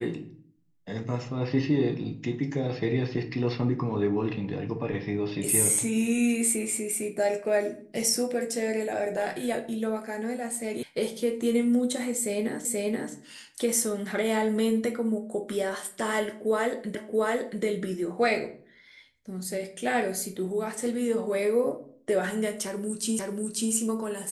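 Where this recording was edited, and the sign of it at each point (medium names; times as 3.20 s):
10.83 s: sound stops dead
12.65 s: repeat of the last 0.48 s
16.95 s: repeat of the last 0.68 s
23.19 s: repeat of the last 0.54 s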